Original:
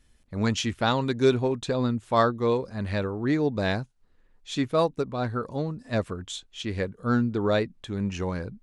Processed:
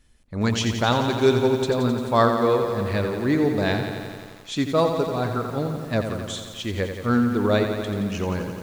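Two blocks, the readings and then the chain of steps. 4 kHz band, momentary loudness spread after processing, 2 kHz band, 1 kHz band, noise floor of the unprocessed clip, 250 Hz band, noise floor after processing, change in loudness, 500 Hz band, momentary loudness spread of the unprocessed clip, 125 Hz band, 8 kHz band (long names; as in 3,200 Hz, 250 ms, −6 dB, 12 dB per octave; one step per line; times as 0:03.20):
+4.0 dB, 11 LU, +4.0 dB, +4.0 dB, −62 dBFS, +4.0 dB, −44 dBFS, +4.0 dB, +4.0 dB, 10 LU, +3.5 dB, +4.0 dB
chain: feedback echo at a low word length 87 ms, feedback 80%, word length 8 bits, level −7.5 dB
level +2.5 dB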